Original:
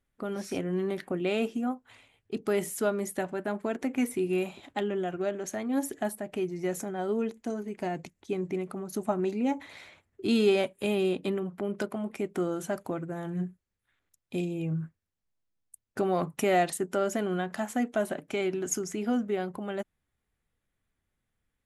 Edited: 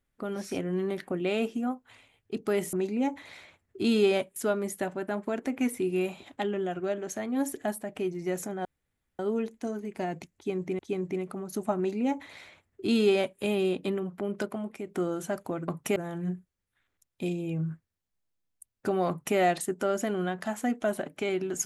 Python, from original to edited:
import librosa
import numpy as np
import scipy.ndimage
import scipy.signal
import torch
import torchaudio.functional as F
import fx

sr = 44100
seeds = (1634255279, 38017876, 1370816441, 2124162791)

y = fx.edit(x, sr, fx.insert_room_tone(at_s=7.02, length_s=0.54),
    fx.repeat(start_s=8.19, length_s=0.43, count=2),
    fx.duplicate(start_s=9.17, length_s=1.63, to_s=2.73),
    fx.fade_out_to(start_s=11.93, length_s=0.34, floor_db=-7.0),
    fx.duplicate(start_s=16.21, length_s=0.28, to_s=13.08), tone=tone)